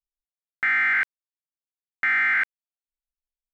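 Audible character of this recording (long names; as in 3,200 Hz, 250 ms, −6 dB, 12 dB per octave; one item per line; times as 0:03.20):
background noise floor −97 dBFS
spectral slope +2.5 dB per octave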